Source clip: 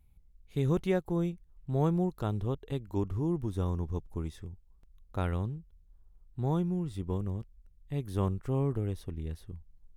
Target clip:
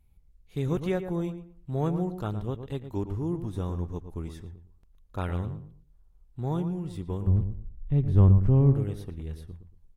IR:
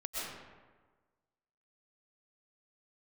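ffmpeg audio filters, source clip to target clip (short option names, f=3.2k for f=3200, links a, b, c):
-filter_complex "[0:a]asplit=3[a][b][c];[a]afade=t=out:st=7.26:d=0.02[d];[b]aemphasis=mode=reproduction:type=riaa,afade=t=in:st=7.26:d=0.02,afade=t=out:st=8.73:d=0.02[e];[c]afade=t=in:st=8.73:d=0.02[f];[d][e][f]amix=inputs=3:normalize=0,asplit=2[g][h];[h]adelay=115,lowpass=f=1.8k:p=1,volume=-9dB,asplit=2[i][j];[j]adelay=115,lowpass=f=1.8k:p=1,volume=0.25,asplit=2[k][l];[l]adelay=115,lowpass=f=1.8k:p=1,volume=0.25[m];[g][i][k][m]amix=inputs=4:normalize=0" -ar 44100 -c:a aac -b:a 48k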